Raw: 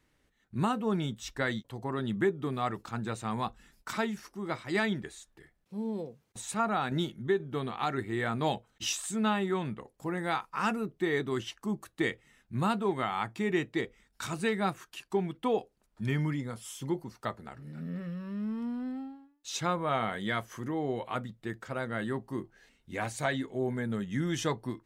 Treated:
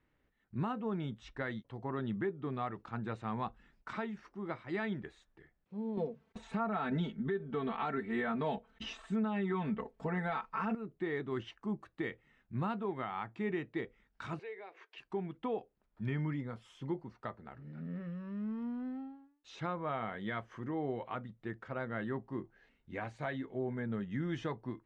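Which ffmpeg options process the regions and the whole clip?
-filter_complex "[0:a]asettb=1/sr,asplit=3[s0][s1][s2];[s0]atrim=end=5.974[s3];[s1]atrim=start=5.97:end=10.75,asetpts=PTS-STARTPTS,afade=t=in:d=0.004:c=qsin,afade=t=out:st=4.776:d=0.004:c=qsin,acontrast=49,aecho=1:1:4.5:0.97,atrim=end_sample=210798[s4];[s2]atrim=start=10.746[s5];[s3][s4]acrossfade=d=0.004:c1=hsin:c2=qsin[s6];[s6][s5]acrossfade=d=0.004:c1=qsin:c2=hsin,asettb=1/sr,asplit=3[s7][s8][s9];[s7]atrim=end=14.394[s10];[s8]atrim=start=14.39:end=14.98,asetpts=PTS-STARTPTS,afade=t=in:d=0.004:c=qsin,afade=t=out:st=0.586:d=0.004:c=qsin,acompressor=threshold=0.0126:ratio=16:attack=3.2:release=140:knee=1:detection=peak,highpass=f=400:w=0.5412,highpass=f=400:w=1.3066,equalizer=f=440:t=q:w=4:g=8,equalizer=f=1300:t=q:w=4:g=-8,equalizer=f=2200:t=q:w=4:g=8,lowpass=f=5800:w=0.5412,lowpass=f=5800:w=1.3066[s11];[s9]atrim=start=14.976[s12];[s10][s11]acrossfade=d=0.004:c1=hsin:c2=qsin[s13];[s13][s12]acrossfade=d=0.004:c1=qsin:c2=hsin,deesser=0.85,lowpass=2500,alimiter=limit=0.075:level=0:latency=1:release=277,volume=0.631"

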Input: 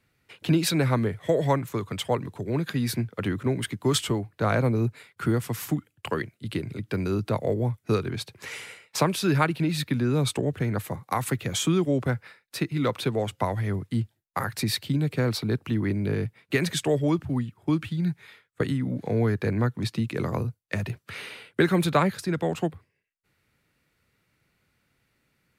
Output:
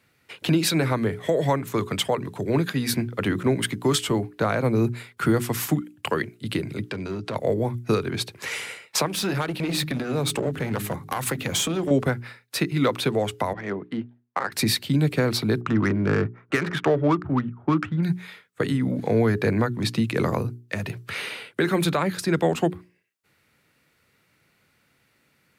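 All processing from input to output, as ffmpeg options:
-filter_complex "[0:a]asettb=1/sr,asplit=3[s0][s1][s2];[s0]atrim=end=6.894[s3];[s1]atrim=start=6.89:end=7.36,asetpts=PTS-STARTPTS,afade=t=in:d=0.004:c=qsin,afade=t=out:st=0.466:d=0.004:c=qsin,lowpass=7400,asoftclip=type=hard:threshold=0.0794,acompressor=threshold=0.0224:ratio=6:attack=3.2:release=140:knee=1:detection=peak[s4];[s2]atrim=start=7.356[s5];[s3][s4]acrossfade=d=0.004:c1=hsin:c2=qsin[s6];[s6][s5]acrossfade=d=0.004:c1=qsin:c2=hsin,asettb=1/sr,asplit=3[s7][s8][s9];[s7]atrim=end=9.064[s10];[s8]atrim=start=9.06:end=11.91,asetpts=PTS-STARTPTS,afade=t=in:d=0.004:c=qsin,afade=t=out:st=2.846:d=0.004:c=qsin,bandreject=f=51.76:t=h:w=4,bandreject=f=103.52:t=h:w=4,bandreject=f=155.28:t=h:w=4,bandreject=f=207.04:t=h:w=4,bandreject=f=258.8:t=h:w=4,bandreject=f=310.56:t=h:w=4,bandreject=f=362.32:t=h:w=4,bandreject=f=414.08:t=h:w=4,acompressor=threshold=0.0631:ratio=10:attack=3.2:release=140:knee=1:detection=peak,aeval=exprs='clip(val(0),-1,0.0335)':c=same[s11];[s9]atrim=start=11.906[s12];[s10][s11]acrossfade=d=0.004:c1=hsin:c2=qsin[s13];[s13][s12]acrossfade=d=0.004:c1=qsin:c2=hsin,asettb=1/sr,asplit=3[s14][s15][s16];[s14]atrim=end=13.534[s17];[s15]atrim=start=13.53:end=14.52,asetpts=PTS-STARTPTS,afade=t=in:d=0.004:c=qsin,afade=t=out:st=0.986:d=0.004:c=qsin,highpass=270,lowpass=3400,adynamicsmooth=sensitivity=5.5:basefreq=2200[s18];[s16]atrim=start=14.516[s19];[s17][s18]acrossfade=d=0.004:c1=hsin:c2=qsin[s20];[s20][s19]acrossfade=d=0.004:c1=qsin:c2=hsin,asettb=1/sr,asplit=3[s21][s22][s23];[s21]atrim=end=15.614[s24];[s22]atrim=start=15.61:end=18.03,asetpts=PTS-STARTPTS,afade=t=in:d=0.004:c=qsin,afade=t=out:st=2.416:d=0.004:c=qsin,lowpass=3300,equalizer=f=1300:w=2.1:g=12.5,adynamicsmooth=sensitivity=3:basefreq=1200[s25];[s23]atrim=start=18.026[s26];[s24][s25]acrossfade=d=0.004:c1=hsin:c2=qsin[s27];[s27][s26]acrossfade=d=0.004:c1=qsin:c2=hsin,highpass=f=140:p=1,bandreject=f=60:t=h:w=6,bandreject=f=120:t=h:w=6,bandreject=f=180:t=h:w=6,bandreject=f=240:t=h:w=6,bandreject=f=300:t=h:w=6,bandreject=f=360:t=h:w=6,bandreject=f=420:t=h:w=6,alimiter=limit=0.119:level=0:latency=1:release=266,volume=2.24"

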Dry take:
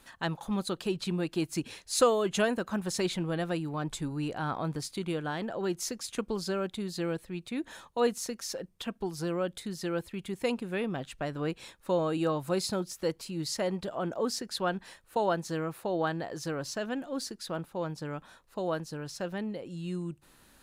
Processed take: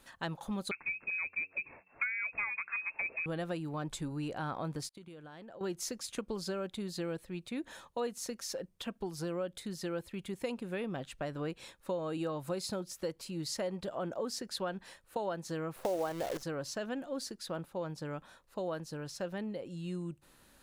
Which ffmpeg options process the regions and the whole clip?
-filter_complex "[0:a]asettb=1/sr,asplit=3[s0][s1][s2];[s0]atrim=end=0.714[s3];[s1]atrim=start=0.71:end=3.26,asetpts=PTS-STARTPTS,afade=t=in:d=0.004:c=qsin,afade=t=out:st=2.546:d=0.004:c=qsin,lowpass=f=2300:t=q:w=0.5098,lowpass=f=2300:t=q:w=0.6013,lowpass=f=2300:t=q:w=0.9,lowpass=f=2300:t=q:w=2.563,afreqshift=-2700,bandreject=f=93.51:t=h:w=4,bandreject=f=187.02:t=h:w=4,bandreject=f=280.53:t=h:w=4,bandreject=f=374.04:t=h:w=4,bandreject=f=467.55:t=h:w=4[s4];[s2]atrim=start=3.256[s5];[s3][s4]acrossfade=d=0.004:c1=hsin:c2=qsin[s6];[s6][s5]acrossfade=d=0.004:c1=qsin:c2=hsin,asettb=1/sr,asplit=3[s7][s8][s9];[s7]atrim=end=4.894[s10];[s8]atrim=start=4.89:end=5.61,asetpts=PTS-STARTPTS,afade=t=in:d=0.004:c=qsin,afade=t=out:st=0.716:d=0.004:c=qsin,agate=range=0.0224:threshold=0.0158:ratio=3:release=100:detection=peak,acompressor=threshold=0.00631:ratio=10:attack=3.2:release=140:knee=1:detection=peak[s11];[s9]atrim=start=5.606[s12];[s10][s11]acrossfade=d=0.004:c1=hsin:c2=qsin[s13];[s13][s12]acrossfade=d=0.004:c1=qsin:c2=hsin,asettb=1/sr,asplit=3[s14][s15][s16];[s14]atrim=end=15.764[s17];[s15]atrim=start=15.76:end=16.43,asetpts=PTS-STARTPTS,afade=t=in:d=0.004:c=qsin,afade=t=out:st=0.666:d=0.004:c=qsin,equalizer=f=580:w=0.6:g=12.5,acrusher=bits=6:dc=4:mix=0:aa=0.000001[s18];[s16]atrim=start=16.426[s19];[s17][s18]acrossfade=d=0.004:c1=hsin:c2=qsin[s20];[s20][s19]acrossfade=d=0.004:c1=qsin:c2=hsin,equalizer=f=550:t=o:w=0.22:g=4,acompressor=threshold=0.0316:ratio=4,volume=0.708"

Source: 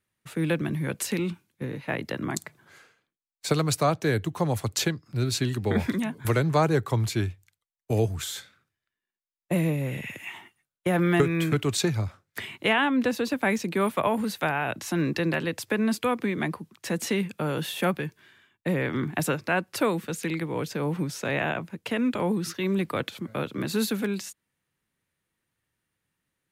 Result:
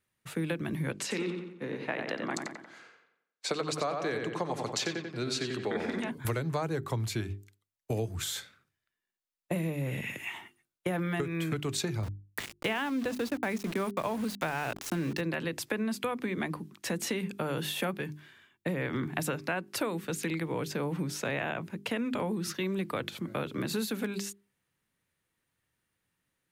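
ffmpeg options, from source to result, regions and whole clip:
-filter_complex "[0:a]asettb=1/sr,asplit=3[s0][s1][s2];[s0]atrim=end=0.924[s3];[s1]atrim=start=0.92:end=6.11,asetpts=PTS-STARTPTS,afade=t=in:d=0.004:c=qsin,afade=t=out:st=5.186:d=0.004:c=qsin,highpass=260,lowpass=6600,asplit=2[s4][s5];[s5]adelay=90,lowpass=f=3400:p=1,volume=0.562,asplit=2[s6][s7];[s7]adelay=90,lowpass=f=3400:p=1,volume=0.47,asplit=2[s8][s9];[s9]adelay=90,lowpass=f=3400:p=1,volume=0.47,asplit=2[s10][s11];[s11]adelay=90,lowpass=f=3400:p=1,volume=0.47,asplit=2[s12][s13];[s13]adelay=90,lowpass=f=3400:p=1,volume=0.47,asplit=2[s14][s15];[s15]adelay=90,lowpass=f=3400:p=1,volume=0.47[s16];[s4][s6][s8][s10][s12][s14][s16]amix=inputs=7:normalize=0,atrim=end_sample=228879[s17];[s2]atrim=start=6.106[s18];[s3][s17]acrossfade=d=0.004:c1=hsin:c2=qsin[s19];[s19][s18]acrossfade=d=0.004:c1=qsin:c2=hsin,asettb=1/sr,asplit=3[s20][s21][s22];[s20]atrim=end=12.034[s23];[s21]atrim=start=12.03:end=15.21,asetpts=PTS-STARTPTS,afade=t=in:d=0.004:c=qsin,afade=t=out:st=3.176:d=0.004:c=qsin,lowshelf=f=300:g=3.5,aeval=exprs='val(0)*gte(abs(val(0)),0.0224)':c=same[s24];[s22]atrim=start=15.206[s25];[s23][s24]acrossfade=d=0.004:c1=hsin:c2=qsin[s26];[s26][s25]acrossfade=d=0.004:c1=qsin:c2=hsin,bandreject=f=50:t=h:w=6,bandreject=f=100:t=h:w=6,bandreject=f=150:t=h:w=6,bandreject=f=200:t=h:w=6,bandreject=f=250:t=h:w=6,bandreject=f=300:t=h:w=6,bandreject=f=350:t=h:w=6,bandreject=f=400:t=h:w=6,acompressor=threshold=0.0355:ratio=5"

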